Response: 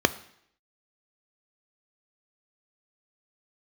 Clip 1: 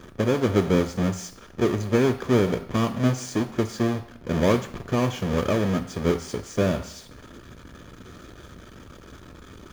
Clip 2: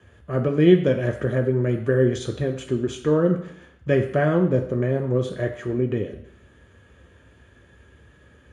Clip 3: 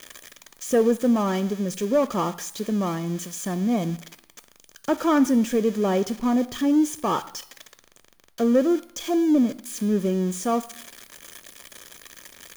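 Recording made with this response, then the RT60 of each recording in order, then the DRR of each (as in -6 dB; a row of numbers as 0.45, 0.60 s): 3; 0.70, 0.70, 0.70 s; 8.0, 3.0, 12.5 dB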